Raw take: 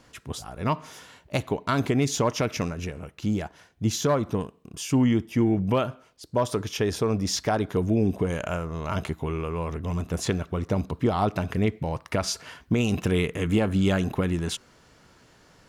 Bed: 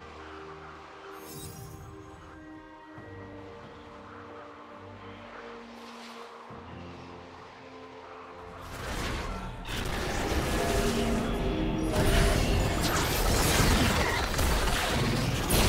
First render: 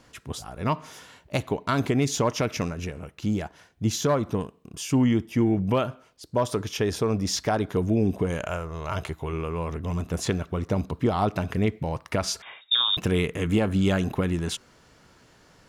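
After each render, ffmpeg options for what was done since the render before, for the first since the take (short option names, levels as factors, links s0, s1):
-filter_complex "[0:a]asettb=1/sr,asplit=3[s0][s1][s2];[s0]atrim=end=8.444[s3];[s1]atrim=start=8.44:end=9.33,asetpts=PTS-STARTPTS,afade=t=in:d=0.004:c=qsin,afade=t=out:st=0.886:d=0.004:c=qsin,equalizer=f=220:t=o:w=0.77:g=-10[s4];[s2]atrim=start=9.326[s5];[s3][s4]acrossfade=d=0.004:c1=hsin:c2=qsin[s6];[s6][s5]acrossfade=d=0.004:c1=qsin:c2=hsin,asettb=1/sr,asplit=3[s7][s8][s9];[s7]atrim=end=12.424[s10];[s8]atrim=start=12.42:end=12.97,asetpts=PTS-STARTPTS,afade=t=in:d=0.004:c=qsin,afade=t=out:st=0.546:d=0.004:c=qsin,lowpass=f=3200:t=q:w=0.5098,lowpass=f=3200:t=q:w=0.6013,lowpass=f=3200:t=q:w=0.9,lowpass=f=3200:t=q:w=2.563,afreqshift=-3800[s11];[s9]atrim=start=12.966[s12];[s10][s11]acrossfade=d=0.004:c1=hsin:c2=qsin[s13];[s13][s12]acrossfade=d=0.004:c1=qsin:c2=hsin"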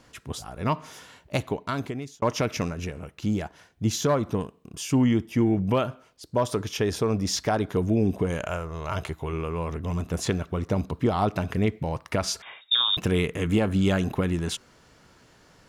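-filter_complex "[0:a]asplit=2[s0][s1];[s0]atrim=end=2.22,asetpts=PTS-STARTPTS,afade=t=out:st=1.39:d=0.83[s2];[s1]atrim=start=2.22,asetpts=PTS-STARTPTS,afade=t=in:d=0.004:c=hsin[s3];[s2][s3]concat=n=2:v=0:a=1"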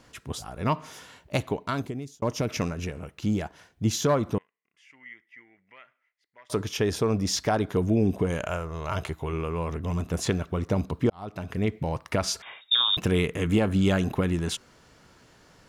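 -filter_complex "[0:a]asettb=1/sr,asplit=3[s0][s1][s2];[s0]atrim=end=1.824[s3];[s1]atrim=start=1.82:end=2.49,asetpts=PTS-STARTPTS,afade=t=in:d=0.004:c=qsin,afade=t=out:st=0.666:d=0.004:c=qsin,equalizer=f=1700:w=0.44:g=-8[s4];[s2]atrim=start=2.486[s5];[s3][s4]acrossfade=d=0.004:c1=hsin:c2=qsin[s6];[s6][s5]acrossfade=d=0.004:c1=qsin:c2=hsin,asettb=1/sr,asplit=3[s7][s8][s9];[s7]atrim=end=4.384[s10];[s8]atrim=start=4.38:end=6.5,asetpts=PTS-STARTPTS,afade=t=in:d=0.004:c=qsin,afade=t=out:st=2.116:d=0.004:c=qsin,bandpass=f=2000:t=q:w=14[s11];[s9]atrim=start=6.496[s12];[s10][s11]acrossfade=d=0.004:c1=hsin:c2=qsin[s13];[s13][s12]acrossfade=d=0.004:c1=qsin:c2=hsin,asplit=2[s14][s15];[s14]atrim=end=11.1,asetpts=PTS-STARTPTS,afade=t=out:st=11.096:d=0.004:c=hsin[s16];[s15]atrim=start=11.1,asetpts=PTS-STARTPTS,afade=t=in:d=0.72[s17];[s16][s17]concat=n=2:v=0:a=1"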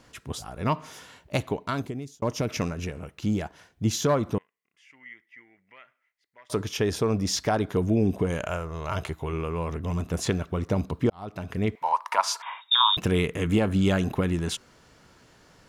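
-filter_complex "[0:a]asettb=1/sr,asplit=3[s0][s1][s2];[s0]atrim=end=11.754[s3];[s1]atrim=start=11.75:end=12.93,asetpts=PTS-STARTPTS,afade=t=in:d=0.004:c=qsin,afade=t=out:st=1.176:d=0.004:c=qsin,highpass=f=960:t=q:w=8.7[s4];[s2]atrim=start=12.926[s5];[s3][s4]acrossfade=d=0.004:c1=hsin:c2=qsin[s6];[s6][s5]acrossfade=d=0.004:c1=qsin:c2=hsin"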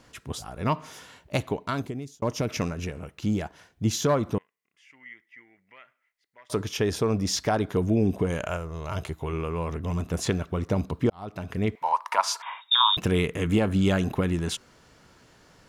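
-filter_complex "[0:a]asettb=1/sr,asplit=3[s0][s1][s2];[s0]atrim=end=8.574[s3];[s1]atrim=start=8.57:end=9.21,asetpts=PTS-STARTPTS,afade=t=in:d=0.004:c=qsin,afade=t=out:st=0.636:d=0.004:c=qsin,equalizer=f=1400:w=0.49:g=-4.5[s4];[s2]atrim=start=9.206[s5];[s3][s4]acrossfade=d=0.004:c1=hsin:c2=qsin[s6];[s6][s5]acrossfade=d=0.004:c1=qsin:c2=hsin"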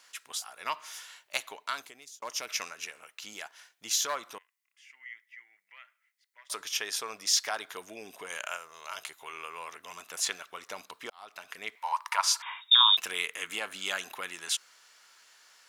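-af "highpass=1300,highshelf=f=4500:g=5.5"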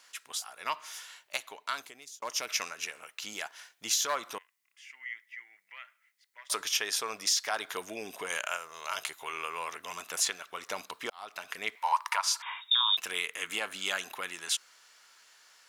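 -af "dynaudnorm=f=430:g=13:m=1.78,alimiter=limit=0.158:level=0:latency=1:release=390"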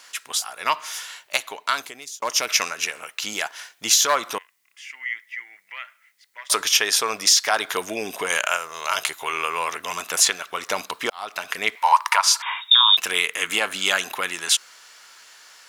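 -af "volume=3.76"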